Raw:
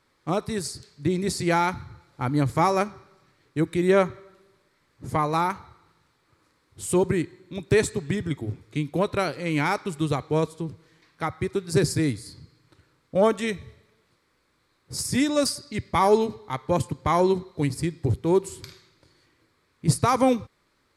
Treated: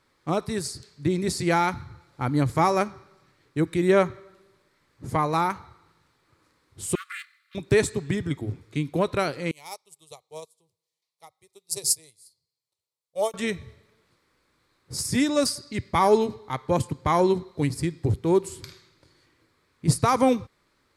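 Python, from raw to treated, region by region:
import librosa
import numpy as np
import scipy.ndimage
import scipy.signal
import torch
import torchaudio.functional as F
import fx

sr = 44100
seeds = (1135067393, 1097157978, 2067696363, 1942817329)

y = fx.chain(x, sr, fx.lower_of_two(delay_ms=2.9),
    fx.brickwall_highpass(low_hz=1100.0),
    fx.peak_eq(hz=6500.0, db=-10.0, octaves=0.74), at=(6.95, 7.55))
y = fx.chain(y, sr, fx.riaa(side='recording'),
    fx.fixed_phaser(hz=640.0, stages=4),
    fx.upward_expand(threshold_db=-36.0, expansion=2.5), at=(9.51, 13.34))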